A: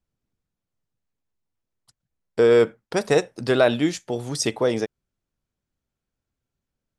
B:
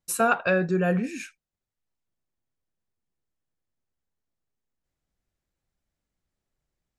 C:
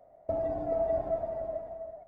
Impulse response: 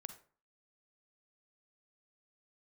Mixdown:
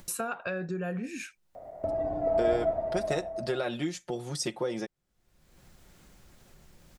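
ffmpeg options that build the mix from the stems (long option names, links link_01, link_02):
-filter_complex "[0:a]aecho=1:1:5.6:0.75,acompressor=threshold=-18dB:ratio=6,volume=-9dB[link_01];[1:a]acompressor=threshold=-24dB:ratio=6,volume=-6dB,asplit=2[link_02][link_03];[2:a]adelay=1550,volume=3dB[link_04];[link_03]apad=whole_len=159791[link_05];[link_04][link_05]sidechaincompress=threshold=-42dB:ratio=8:attack=16:release=1370[link_06];[link_01][link_02][link_06]amix=inputs=3:normalize=0,acompressor=mode=upward:threshold=-31dB:ratio=2.5"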